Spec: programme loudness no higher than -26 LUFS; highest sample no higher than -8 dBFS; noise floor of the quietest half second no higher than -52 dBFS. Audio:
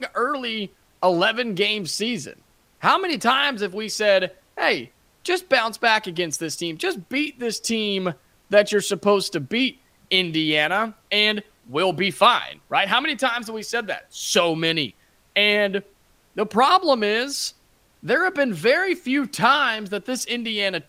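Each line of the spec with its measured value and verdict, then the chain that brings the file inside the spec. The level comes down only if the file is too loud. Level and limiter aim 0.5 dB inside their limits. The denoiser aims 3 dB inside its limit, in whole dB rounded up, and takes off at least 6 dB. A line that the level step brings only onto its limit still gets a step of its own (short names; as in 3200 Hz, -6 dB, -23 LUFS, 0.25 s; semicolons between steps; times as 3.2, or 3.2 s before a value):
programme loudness -21.5 LUFS: fail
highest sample -4.0 dBFS: fail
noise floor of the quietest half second -59 dBFS: OK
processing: gain -5 dB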